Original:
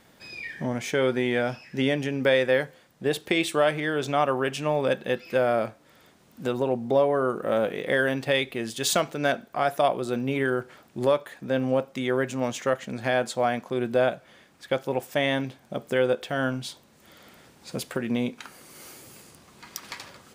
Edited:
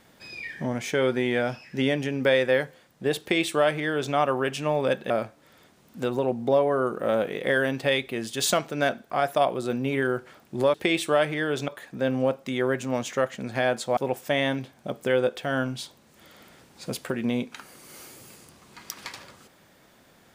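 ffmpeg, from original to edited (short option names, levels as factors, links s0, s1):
-filter_complex "[0:a]asplit=5[s0][s1][s2][s3][s4];[s0]atrim=end=5.102[s5];[s1]atrim=start=5.528:end=11.172[s6];[s2]atrim=start=3.198:end=4.142[s7];[s3]atrim=start=11.168:end=13.462[s8];[s4]atrim=start=14.828[s9];[s5][s6]acrossfade=d=0.004:c1=hsin:c2=hsin[s10];[s10][s7]acrossfade=d=0.004:c1=hsin:c2=hsin[s11];[s11][s8]acrossfade=d=0.004:c1=hsin:c2=hsin[s12];[s12][s9]acrossfade=d=0.004:c1=hsin:c2=hsin"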